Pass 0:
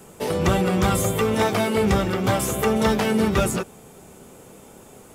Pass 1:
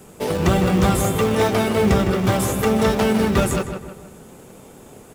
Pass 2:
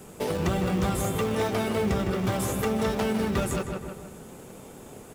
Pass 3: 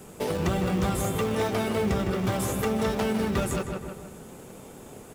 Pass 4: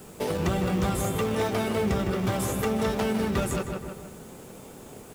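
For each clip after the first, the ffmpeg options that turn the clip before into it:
-filter_complex "[0:a]asplit=2[a][b];[b]acrusher=samples=29:mix=1:aa=0.000001:lfo=1:lforange=29:lforate=3.2,volume=-8.5dB[c];[a][c]amix=inputs=2:normalize=0,asplit=2[d][e];[e]adelay=157,lowpass=f=3k:p=1,volume=-7.5dB,asplit=2[f][g];[g]adelay=157,lowpass=f=3k:p=1,volume=0.46,asplit=2[h][i];[i]adelay=157,lowpass=f=3k:p=1,volume=0.46,asplit=2[j][k];[k]adelay=157,lowpass=f=3k:p=1,volume=0.46,asplit=2[l][m];[m]adelay=157,lowpass=f=3k:p=1,volume=0.46[n];[d][f][h][j][l][n]amix=inputs=6:normalize=0"
-af "acompressor=threshold=-27dB:ratio=2,volume=-1.5dB"
-af anull
-af "acrusher=bits=8:mix=0:aa=0.000001"

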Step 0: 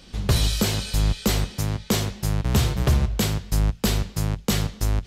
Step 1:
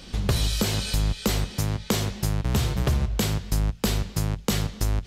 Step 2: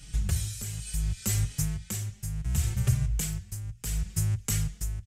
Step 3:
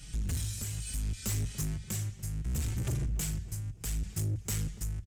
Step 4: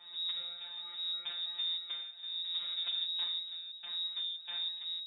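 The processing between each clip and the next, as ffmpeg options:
-af "acompressor=threshold=-28dB:ratio=2.5,volume=4.5dB"
-filter_complex "[0:a]equalizer=f=125:t=o:w=1:g=6,equalizer=f=250:t=o:w=1:g=-12,equalizer=f=500:t=o:w=1:g=-11,equalizer=f=1k:t=o:w=1:g=-11,equalizer=f=4k:t=o:w=1:g=-11,equalizer=f=8k:t=o:w=1:g=9,tremolo=f=0.69:d=0.67,asplit=2[a][b];[b]adelay=4.4,afreqshift=1.3[c];[a][c]amix=inputs=2:normalize=1,volume=1.5dB"
-filter_complex "[0:a]asoftclip=type=tanh:threshold=-28.5dB,asplit=2[a][b];[b]adelay=289,lowpass=f=860:p=1,volume=-13.5dB,asplit=2[c][d];[d]adelay=289,lowpass=f=860:p=1,volume=0.47,asplit=2[e][f];[f]adelay=289,lowpass=f=860:p=1,volume=0.47,asplit=2[g][h];[h]adelay=289,lowpass=f=860:p=1,volume=0.47,asplit=2[i][j];[j]adelay=289,lowpass=f=860:p=1,volume=0.47[k];[a][c][e][g][i][k]amix=inputs=6:normalize=0"
-af "afftfilt=real='hypot(re,im)*cos(PI*b)':imag='0':win_size=1024:overlap=0.75,aemphasis=mode=reproduction:type=50fm,lowpass=f=3.2k:t=q:w=0.5098,lowpass=f=3.2k:t=q:w=0.6013,lowpass=f=3.2k:t=q:w=0.9,lowpass=f=3.2k:t=q:w=2.563,afreqshift=-3800,volume=1dB"

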